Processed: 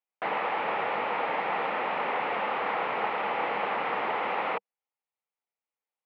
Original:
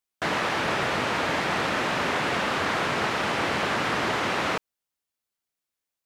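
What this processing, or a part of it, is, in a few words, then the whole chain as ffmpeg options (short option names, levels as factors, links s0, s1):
bass cabinet: -af "highpass=f=1200:p=1,highpass=74,equalizer=f=200:t=q:w=4:g=5,equalizer=f=480:t=q:w=4:g=8,equalizer=f=820:t=q:w=4:g=8,equalizer=f=1600:t=q:w=4:g=-8,lowpass=f=2400:w=0.5412,lowpass=f=2400:w=1.3066"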